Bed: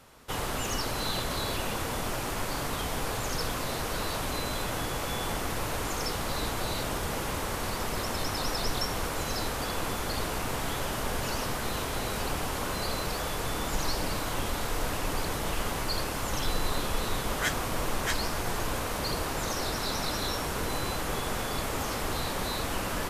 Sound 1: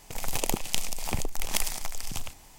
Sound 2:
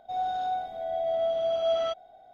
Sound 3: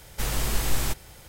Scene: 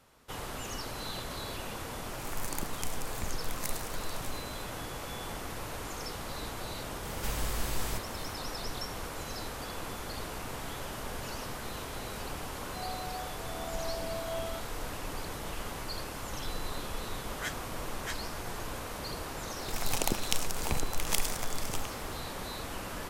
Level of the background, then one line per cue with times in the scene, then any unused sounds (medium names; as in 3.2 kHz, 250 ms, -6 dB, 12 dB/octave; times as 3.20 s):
bed -7.5 dB
2.09 s: add 1 -7 dB + static phaser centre 1.4 kHz, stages 4
7.05 s: add 3 -8.5 dB + three bands compressed up and down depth 70%
12.66 s: add 2 -12.5 dB
19.58 s: add 1 -2.5 dB